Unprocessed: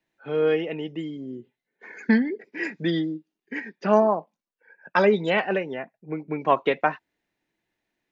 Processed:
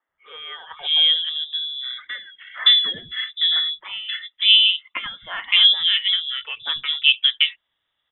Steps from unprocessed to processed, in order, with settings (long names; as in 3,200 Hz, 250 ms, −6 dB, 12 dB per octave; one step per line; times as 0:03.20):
treble cut that deepens with the level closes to 1,900 Hz, closed at −19.5 dBFS
voice inversion scrambler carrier 3,700 Hz
three-band delay without the direct sound mids, lows, highs 90/570 ms, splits 240/1,800 Hz
level +5.5 dB